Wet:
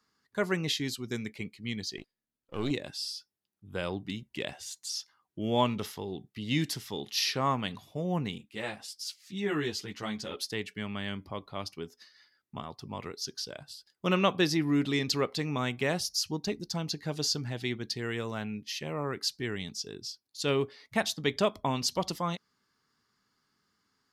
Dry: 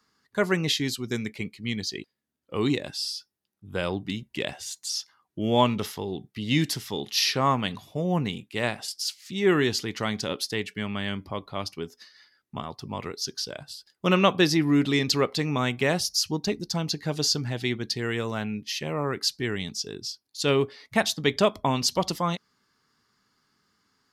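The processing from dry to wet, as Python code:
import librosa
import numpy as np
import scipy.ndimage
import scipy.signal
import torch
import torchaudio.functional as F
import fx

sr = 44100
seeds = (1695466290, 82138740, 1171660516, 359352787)

y = fx.halfwave_gain(x, sr, db=-7.0, at=(1.97, 2.71))
y = fx.ensemble(y, sr, at=(8.38, 10.37))
y = F.gain(torch.from_numpy(y), -5.5).numpy()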